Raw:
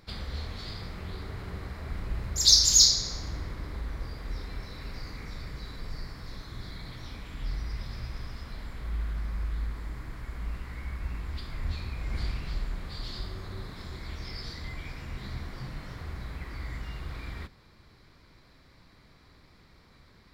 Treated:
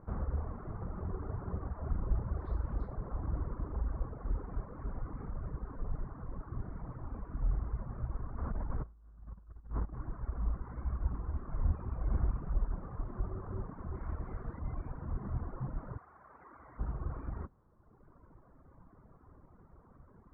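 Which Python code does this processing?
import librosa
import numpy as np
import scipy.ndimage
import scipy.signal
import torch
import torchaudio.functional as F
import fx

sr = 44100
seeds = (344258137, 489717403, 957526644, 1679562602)

y = fx.over_compress(x, sr, threshold_db=-38.0, ratio=-0.5, at=(8.38, 9.93))
y = fx.high_shelf(y, sr, hz=2800.0, db=11.5, at=(13.95, 14.59))
y = fx.highpass(y, sr, hz=1100.0, slope=6, at=(15.97, 16.78), fade=0.02)
y = fx.dereverb_blind(y, sr, rt60_s=1.5)
y = scipy.signal.sosfilt(scipy.signal.butter(6, 1300.0, 'lowpass', fs=sr, output='sos'), y)
y = y * librosa.db_to_amplitude(3.0)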